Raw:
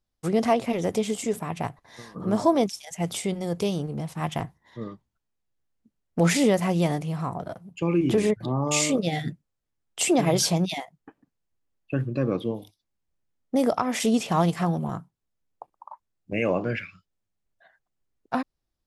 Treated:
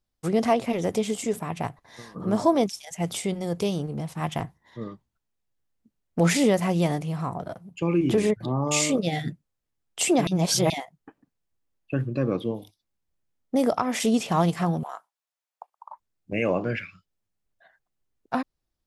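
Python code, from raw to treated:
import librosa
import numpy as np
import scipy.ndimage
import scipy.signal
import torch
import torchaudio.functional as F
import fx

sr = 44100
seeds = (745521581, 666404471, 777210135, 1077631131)

y = fx.highpass(x, sr, hz=650.0, slope=24, at=(14.83, 15.9))
y = fx.edit(y, sr, fx.reverse_span(start_s=10.27, length_s=0.43), tone=tone)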